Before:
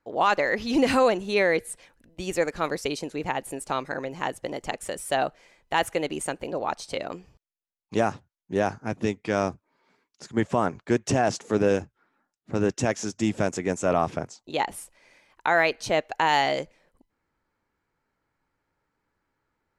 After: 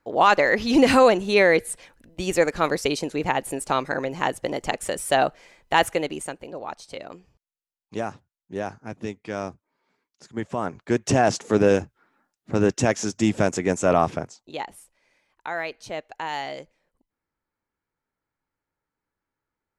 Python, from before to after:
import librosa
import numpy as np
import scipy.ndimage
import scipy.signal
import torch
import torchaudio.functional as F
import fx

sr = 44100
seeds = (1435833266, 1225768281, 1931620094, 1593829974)

y = fx.gain(x, sr, db=fx.line((5.82, 5.0), (6.44, -5.5), (10.46, -5.5), (11.18, 4.0), (14.04, 4.0), (14.76, -8.5)))